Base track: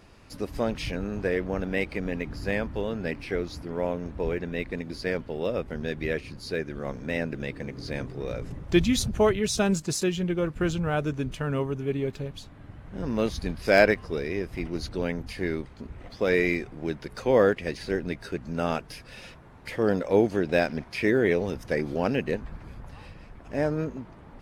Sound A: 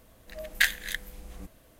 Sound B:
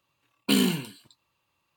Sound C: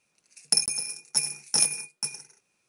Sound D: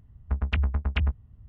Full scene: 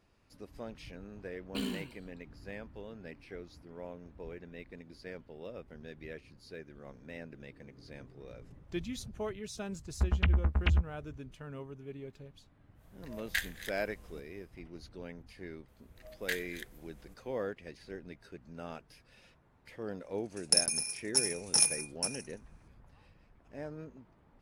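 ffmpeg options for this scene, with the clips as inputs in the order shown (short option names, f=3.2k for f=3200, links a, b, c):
-filter_complex "[1:a]asplit=2[a][b];[0:a]volume=-16.5dB[c];[2:a]highshelf=f=6.2k:g=-8,atrim=end=1.76,asetpts=PTS-STARTPTS,volume=-13.5dB,afade=t=in:d=0.004:c=hsin,afade=t=out:st=1.756:d=0.004:c=hsin,adelay=1060[d];[4:a]atrim=end=1.48,asetpts=PTS-STARTPTS,volume=-2dB,afade=t=in:d=0.004:c=hsin,afade=t=out:st=1.476:d=0.004:c=hsin,adelay=427770S[e];[a]atrim=end=1.79,asetpts=PTS-STARTPTS,volume=-10dB,afade=t=in:d=0.1,afade=t=out:st=1.69:d=0.1,adelay=12740[f];[b]atrim=end=1.79,asetpts=PTS-STARTPTS,volume=-13dB,afade=t=in:d=0.004:c=hsin,afade=t=out:st=1.786:d=0.004:c=hsin,adelay=15680[g];[3:a]atrim=end=2.68,asetpts=PTS-STARTPTS,volume=-3.5dB,afade=t=in:d=0.004:c=hsin,afade=t=out:st=2.676:d=0.004:c=hsin,adelay=20000[h];[c][d][e][f][g][h]amix=inputs=6:normalize=0"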